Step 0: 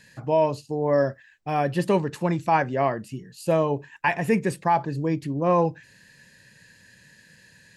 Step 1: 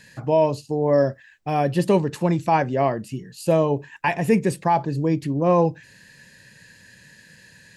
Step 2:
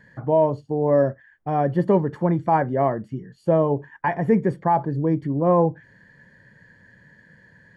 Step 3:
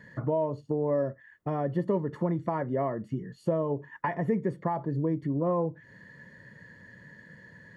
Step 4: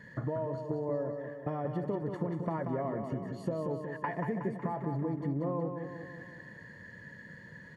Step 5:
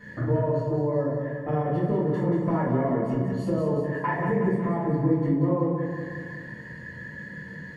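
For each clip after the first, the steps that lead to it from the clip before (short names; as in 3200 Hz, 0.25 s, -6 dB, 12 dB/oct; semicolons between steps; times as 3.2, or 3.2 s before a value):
dynamic EQ 1500 Hz, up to -6 dB, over -38 dBFS, Q 0.94; gain +4 dB
polynomial smoothing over 41 samples
compressor 3:1, threshold -30 dBFS, peak gain reduction 13 dB; notch comb 790 Hz; gain +2.5 dB
compressor, threshold -31 dBFS, peak gain reduction 9 dB; on a send: feedback echo 0.184 s, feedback 56%, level -6 dB
reverb RT60 0.60 s, pre-delay 4 ms, DRR -8 dB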